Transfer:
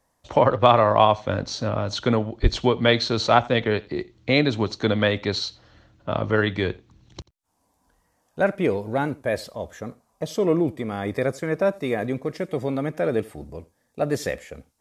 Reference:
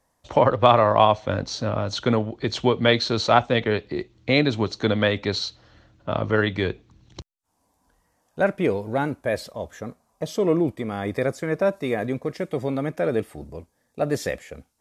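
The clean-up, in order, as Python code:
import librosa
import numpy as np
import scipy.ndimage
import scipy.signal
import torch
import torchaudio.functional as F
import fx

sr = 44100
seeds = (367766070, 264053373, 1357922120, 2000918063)

y = fx.fix_deplosive(x, sr, at_s=(2.42,))
y = fx.fix_echo_inverse(y, sr, delay_ms=86, level_db=-23.5)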